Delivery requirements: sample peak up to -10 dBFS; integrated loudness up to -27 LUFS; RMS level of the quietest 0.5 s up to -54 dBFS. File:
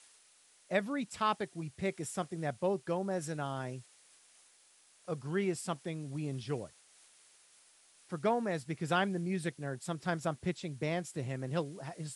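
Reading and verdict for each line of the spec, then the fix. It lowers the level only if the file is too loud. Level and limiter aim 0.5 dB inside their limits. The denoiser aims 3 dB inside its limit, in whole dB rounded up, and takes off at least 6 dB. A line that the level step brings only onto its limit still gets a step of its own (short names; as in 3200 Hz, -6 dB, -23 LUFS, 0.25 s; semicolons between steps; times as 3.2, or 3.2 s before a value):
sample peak -16.5 dBFS: OK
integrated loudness -36.5 LUFS: OK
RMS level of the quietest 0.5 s -65 dBFS: OK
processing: none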